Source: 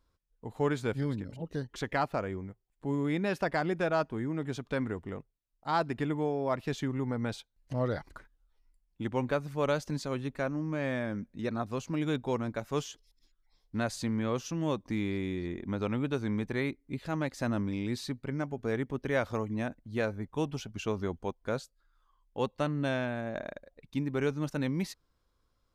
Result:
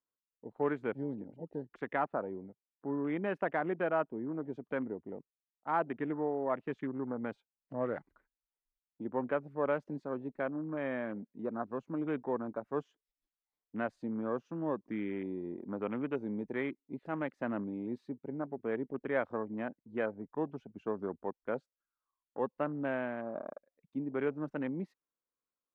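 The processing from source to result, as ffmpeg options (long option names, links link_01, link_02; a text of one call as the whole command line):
ffmpeg -i in.wav -filter_complex "[0:a]asettb=1/sr,asplit=3[link_01][link_02][link_03];[link_01]atrim=end=15.974[link_04];[link_02]atrim=start=15.97:end=17.32,asetpts=PTS-STARTPTS,afade=type=in:duration=0.004:curve=qsin,afade=type=out:start_time=1.346:duration=0.004:curve=qsin,highshelf=frequency=5400:gain=9.5[link_05];[link_03]atrim=start=17.316[link_06];[link_04][link_05]acrossfade=duration=0.004:curve1=hsin:curve2=qsin[link_07];[link_07][link_06]acrossfade=duration=0.004:curve1=qsin:curve2=hsin,afwtdn=0.00891,acrossover=split=180 2600:gain=0.0631 1 0.126[link_08][link_09][link_10];[link_08][link_09][link_10]amix=inputs=3:normalize=0,volume=-2dB" out.wav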